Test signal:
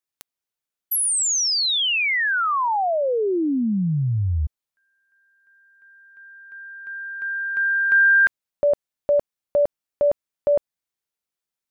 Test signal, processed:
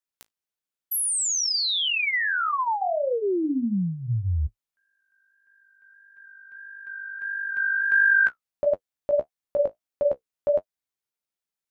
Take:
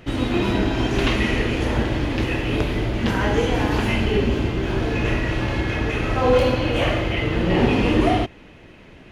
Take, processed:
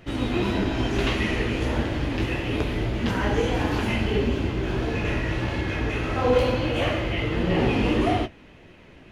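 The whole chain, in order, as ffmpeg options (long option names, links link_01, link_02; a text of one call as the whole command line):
ffmpeg -i in.wav -af "flanger=delay=9.9:depth=9.9:regen=-31:speed=1.6:shape=triangular" out.wav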